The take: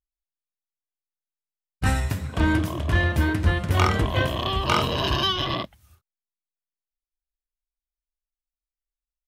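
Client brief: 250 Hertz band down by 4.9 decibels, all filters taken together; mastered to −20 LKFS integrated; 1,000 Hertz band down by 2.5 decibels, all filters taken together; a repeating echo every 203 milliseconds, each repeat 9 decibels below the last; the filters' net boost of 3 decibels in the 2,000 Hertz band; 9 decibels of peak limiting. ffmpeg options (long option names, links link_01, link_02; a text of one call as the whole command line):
ffmpeg -i in.wav -af "equalizer=frequency=250:width_type=o:gain=-7,equalizer=frequency=1000:width_type=o:gain=-4.5,equalizer=frequency=2000:width_type=o:gain=5.5,alimiter=limit=-15dB:level=0:latency=1,aecho=1:1:203|406|609|812:0.355|0.124|0.0435|0.0152,volume=5dB" out.wav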